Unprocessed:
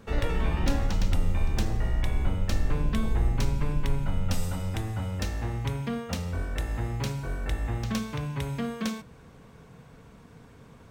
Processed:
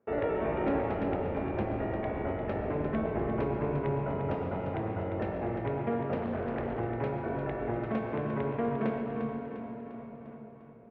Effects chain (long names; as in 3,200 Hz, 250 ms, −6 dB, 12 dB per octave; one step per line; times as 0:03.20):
noise gate with hold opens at −39 dBFS
loudspeaker in its box 170–2,000 Hz, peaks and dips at 180 Hz −7 dB, 390 Hz +8 dB, 650 Hz +8 dB, 1,100 Hz −3 dB, 1,700 Hz −4 dB
repeating echo 350 ms, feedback 56%, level −9 dB
convolution reverb RT60 4.4 s, pre-delay 92 ms, DRR 4 dB
0:06.16–0:06.80: highs frequency-modulated by the lows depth 0.38 ms